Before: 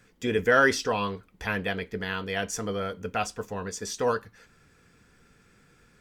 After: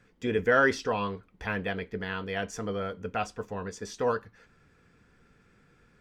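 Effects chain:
low-pass filter 2,700 Hz 6 dB per octave
level −1.5 dB

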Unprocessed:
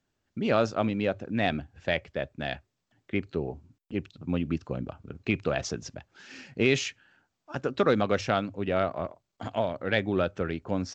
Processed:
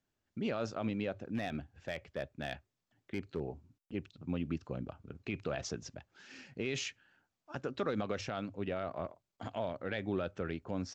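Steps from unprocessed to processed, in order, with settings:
brickwall limiter −18.5 dBFS, peak gain reduction 8.5 dB
0:01.25–0:03.40: gain into a clipping stage and back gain 22.5 dB
level −6.5 dB

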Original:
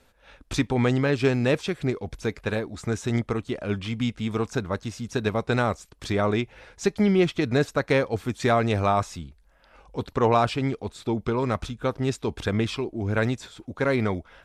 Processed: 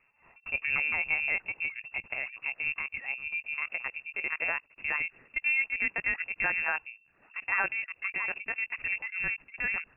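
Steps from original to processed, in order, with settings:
gliding playback speed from 108% → 182%
linear-prediction vocoder at 8 kHz pitch kept
voice inversion scrambler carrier 2,700 Hz
level −8.5 dB

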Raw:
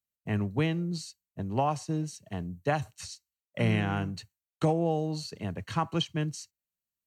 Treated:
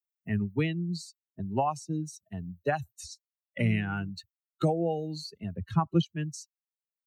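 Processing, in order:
spectral dynamics exaggerated over time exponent 2
0:05.56–0:06.03: tilt shelving filter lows +9.5 dB
multiband upward and downward compressor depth 40%
level +3.5 dB

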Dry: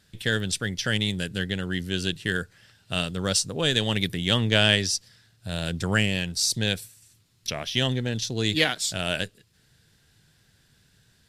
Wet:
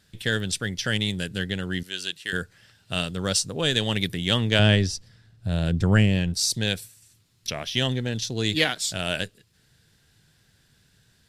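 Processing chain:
0:01.83–0:02.33: high-pass filter 1,300 Hz 6 dB per octave
0:04.59–0:06.34: spectral tilt −2.5 dB per octave

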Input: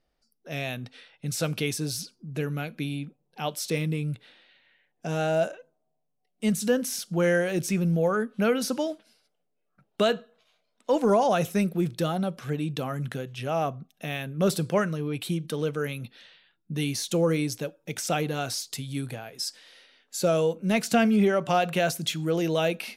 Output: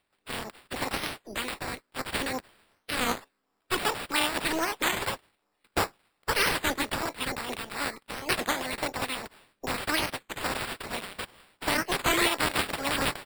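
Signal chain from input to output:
ceiling on every frequency bin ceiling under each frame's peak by 30 dB
auto-filter notch sine 1.5 Hz 380–1,800 Hz
wrong playback speed 45 rpm record played at 78 rpm
decimation without filtering 7×
wow of a warped record 33 1/3 rpm, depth 250 cents
level −1.5 dB

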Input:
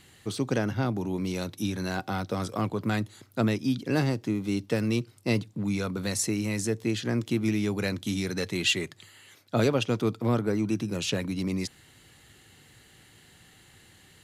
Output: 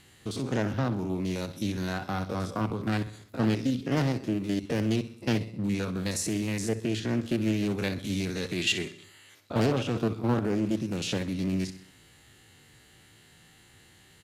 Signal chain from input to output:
spectrum averaged block by block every 50 ms
repeating echo 64 ms, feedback 51%, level −14 dB
highs frequency-modulated by the lows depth 0.4 ms

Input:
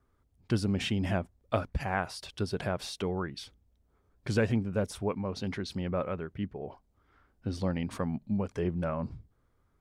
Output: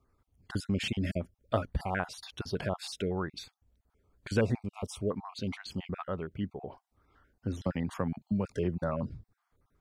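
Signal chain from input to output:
time-frequency cells dropped at random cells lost 31%
0:07.64–0:09.03: multiband upward and downward compressor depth 40%

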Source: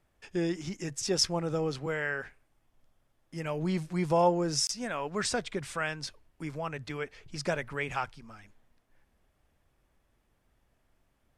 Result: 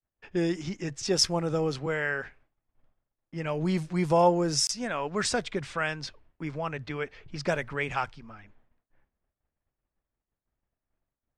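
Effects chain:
low-pass that shuts in the quiet parts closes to 2,200 Hz, open at −25.5 dBFS
downward expander −58 dBFS
level +3 dB

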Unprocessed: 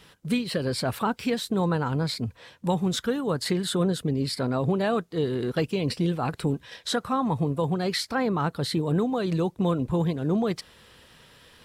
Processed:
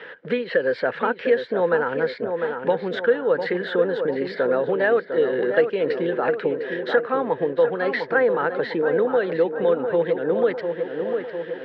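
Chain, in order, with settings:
loudspeaker in its box 470–2,700 Hz, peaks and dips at 490 Hz +10 dB, 740 Hz −5 dB, 1,100 Hz −9 dB, 1,700 Hz +9 dB, 2,500 Hz −6 dB
tape delay 701 ms, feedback 59%, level −6.5 dB, low-pass 1,500 Hz
multiband upward and downward compressor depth 40%
level +6 dB

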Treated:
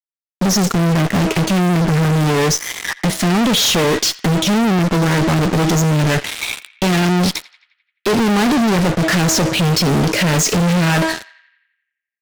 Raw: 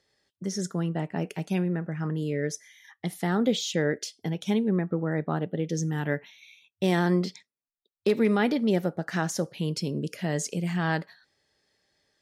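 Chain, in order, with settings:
one scale factor per block 5 bits
Chebyshev low-pass filter 6,500 Hz, order 2
low-shelf EQ 270 Hz +4 dB
hum removal 321.6 Hz, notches 28
in parallel at +2.5 dB: downward compressor, threshold −34 dBFS, peak gain reduction 15.5 dB
on the sum: fuzz pedal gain 46 dB, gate −45 dBFS
feedback echo with a band-pass in the loop 86 ms, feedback 61%, band-pass 2,100 Hz, level −18.5 dB
highs frequency-modulated by the lows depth 0.11 ms

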